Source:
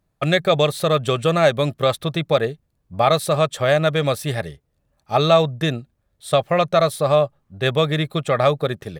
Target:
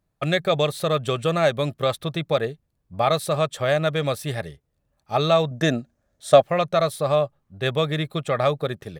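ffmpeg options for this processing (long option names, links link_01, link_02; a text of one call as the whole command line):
ffmpeg -i in.wav -filter_complex "[0:a]asettb=1/sr,asplit=3[link_01][link_02][link_03];[link_01]atrim=end=5.514[link_04];[link_02]atrim=start=5.51:end=6.42,asetpts=PTS-STARTPTS,afade=type=in:duration=0.004:curve=qsin,afade=type=out:start_time=0.906:duration=0.004:curve=qsin,equalizer=frequency=250:width_type=o:width=0.67:gain=9,equalizer=frequency=630:width_type=o:width=0.67:gain=10,equalizer=frequency=1600:width_type=o:width=0.67:gain=7,equalizer=frequency=6300:width_type=o:width=0.67:gain=10[link_05];[link_03]atrim=start=6.416[link_06];[link_04][link_05]acrossfade=duration=0.004:curve1=hsin:curve2=qsin[link_07];[link_07][link_06]acrossfade=duration=0.004:curve1=qsin:curve2=hsin,volume=-4dB" out.wav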